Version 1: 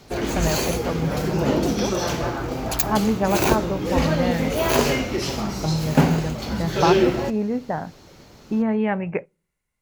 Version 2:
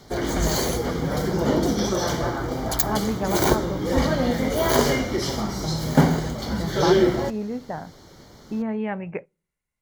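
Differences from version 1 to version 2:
speech -5.5 dB; background: add Butterworth band-stop 2600 Hz, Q 4

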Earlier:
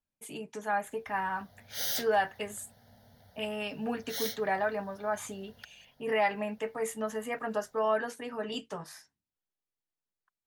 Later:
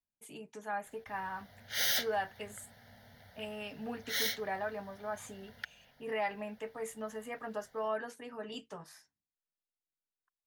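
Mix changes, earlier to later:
speech -7.0 dB; background: add bell 2100 Hz +10.5 dB 1.3 oct

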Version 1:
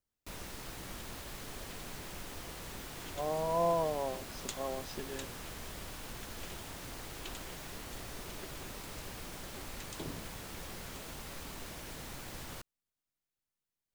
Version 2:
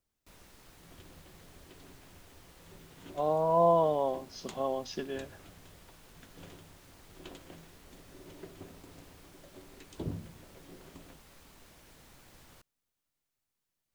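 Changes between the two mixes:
speech +6.0 dB; first sound -12.0 dB; second sound: add tilt -3 dB/oct

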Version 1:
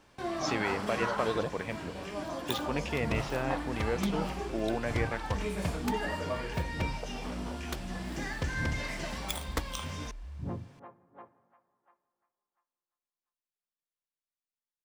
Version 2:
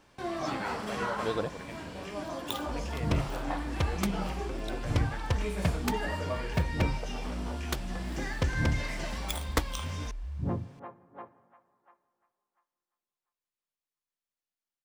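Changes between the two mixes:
speech -9.5 dB; second sound +5.5 dB

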